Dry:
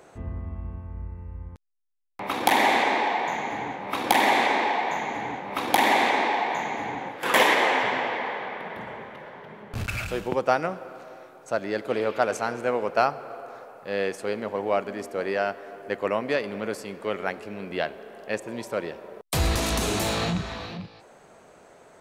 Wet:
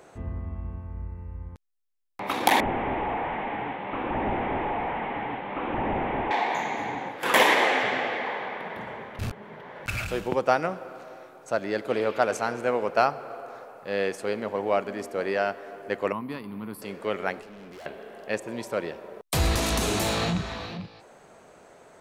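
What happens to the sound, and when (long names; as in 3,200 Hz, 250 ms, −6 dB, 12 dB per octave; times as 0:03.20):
0:02.60–0:06.31: linear delta modulator 16 kbit/s, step −36.5 dBFS
0:07.64–0:08.27: notch filter 960 Hz, Q 5.9
0:09.19–0:09.86: reverse
0:16.12–0:16.82: drawn EQ curve 260 Hz 0 dB, 580 Hz −20 dB, 1,000 Hz −1 dB, 1,600 Hz −14 dB, 4,300 Hz −10 dB, 6,700 Hz −23 dB, 11,000 Hz +6 dB
0:17.41–0:17.86: tube saturation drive 42 dB, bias 0.55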